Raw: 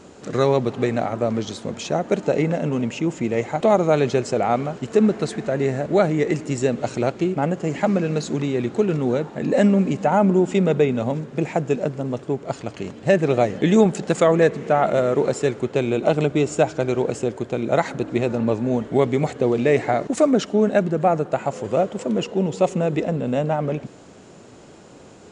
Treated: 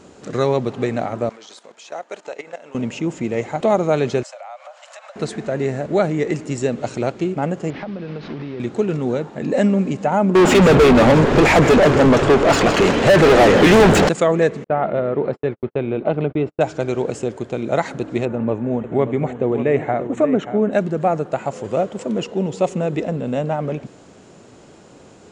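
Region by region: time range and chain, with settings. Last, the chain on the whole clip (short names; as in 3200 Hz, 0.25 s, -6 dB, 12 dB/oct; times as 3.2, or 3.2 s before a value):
1.29–2.75 HPF 690 Hz + level quantiser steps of 14 dB
4.23–5.16 Chebyshev high-pass 530 Hz, order 10 + compressor 3:1, threshold -37 dBFS
7.7–8.6 delta modulation 32 kbps, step -25.5 dBFS + compressor 12:1, threshold -24 dBFS + air absorption 290 m
10.35–14.09 overdrive pedal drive 37 dB, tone 2400 Hz, clips at -4 dBFS + frequency-shifting echo 0.167 s, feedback 59%, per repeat -120 Hz, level -11.5 dB
14.64–16.61 air absorption 410 m + gate -29 dBFS, range -52 dB
18.25–20.73 running mean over 9 samples + echo 0.584 s -11 dB
whole clip: dry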